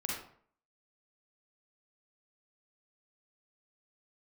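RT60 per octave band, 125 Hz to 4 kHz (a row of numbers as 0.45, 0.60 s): 0.55, 0.55, 0.55, 0.55, 0.45, 0.35 s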